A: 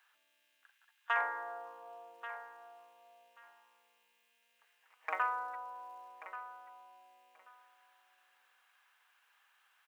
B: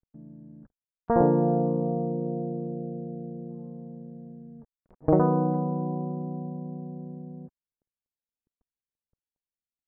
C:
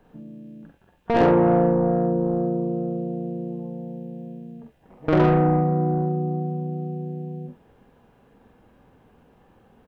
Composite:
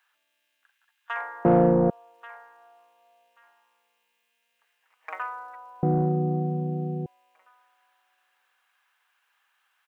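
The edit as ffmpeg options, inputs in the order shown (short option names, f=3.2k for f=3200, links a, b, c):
-filter_complex "[2:a]asplit=2[a][b];[0:a]asplit=3[c][d][e];[c]atrim=end=1.452[f];[a]atrim=start=1.448:end=1.902[g];[d]atrim=start=1.898:end=5.832[h];[b]atrim=start=5.828:end=7.062[i];[e]atrim=start=7.058[j];[f][g]acrossfade=d=0.004:c1=hsin:c2=hsin[k];[k][h]acrossfade=d=0.004:c1=hsin:c2=hsin[l];[l][i]acrossfade=d=0.004:c1=hsin:c2=hsin[m];[m][j]acrossfade=d=0.004:c1=hsin:c2=hsin"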